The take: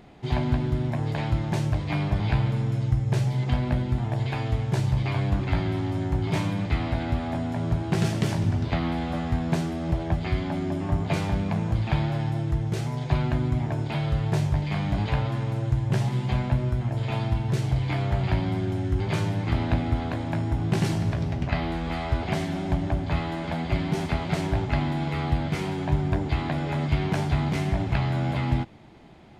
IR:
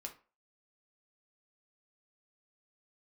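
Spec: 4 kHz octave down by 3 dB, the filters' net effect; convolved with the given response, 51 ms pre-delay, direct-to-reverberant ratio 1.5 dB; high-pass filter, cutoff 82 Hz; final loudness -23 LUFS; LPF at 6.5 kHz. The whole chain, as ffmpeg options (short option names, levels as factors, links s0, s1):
-filter_complex "[0:a]highpass=82,lowpass=6500,equalizer=f=4000:t=o:g=-3.5,asplit=2[s0][s1];[1:a]atrim=start_sample=2205,adelay=51[s2];[s1][s2]afir=irnorm=-1:irlink=0,volume=1.26[s3];[s0][s3]amix=inputs=2:normalize=0,volume=1.5"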